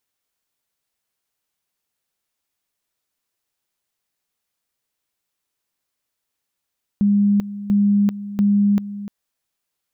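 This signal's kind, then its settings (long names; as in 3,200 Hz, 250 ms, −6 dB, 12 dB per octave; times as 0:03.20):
tone at two levels in turn 203 Hz −12.5 dBFS, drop 14.5 dB, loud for 0.39 s, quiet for 0.30 s, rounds 3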